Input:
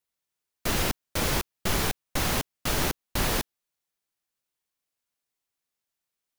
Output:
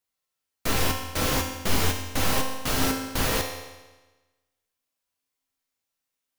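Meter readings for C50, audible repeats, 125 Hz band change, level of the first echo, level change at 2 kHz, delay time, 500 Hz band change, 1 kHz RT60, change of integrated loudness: 5.5 dB, none, +2.0 dB, none, +1.5 dB, none, +2.5 dB, 1.2 s, +2.0 dB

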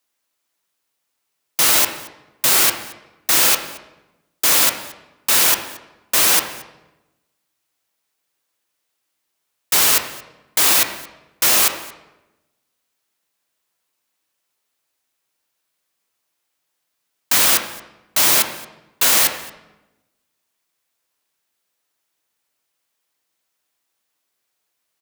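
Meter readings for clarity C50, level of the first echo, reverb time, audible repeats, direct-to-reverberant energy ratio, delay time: 8.0 dB, -23.0 dB, 0.95 s, 1, 4.5 dB, 0.225 s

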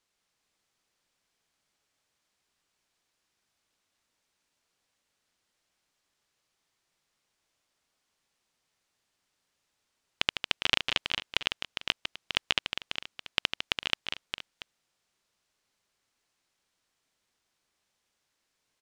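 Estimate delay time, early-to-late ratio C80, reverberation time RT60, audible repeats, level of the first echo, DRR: 0.153 s, none, none, 4, -8.0 dB, none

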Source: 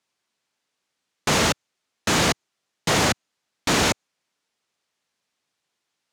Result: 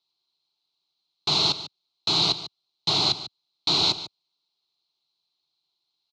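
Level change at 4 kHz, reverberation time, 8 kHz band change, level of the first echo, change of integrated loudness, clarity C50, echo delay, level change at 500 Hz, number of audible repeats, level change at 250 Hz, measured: +5.0 dB, none, -11.5 dB, -14.0 dB, -0.5 dB, none, 0.146 s, -10.0 dB, 1, -9.5 dB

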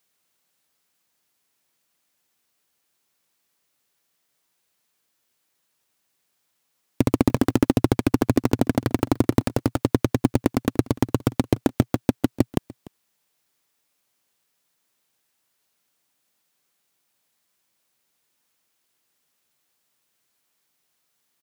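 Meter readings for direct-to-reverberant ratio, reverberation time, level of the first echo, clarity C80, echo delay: none, none, -21.5 dB, none, 0.295 s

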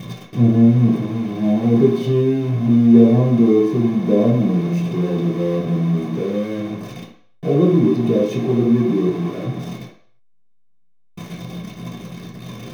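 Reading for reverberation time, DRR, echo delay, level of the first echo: 0.55 s, -7.5 dB, none, none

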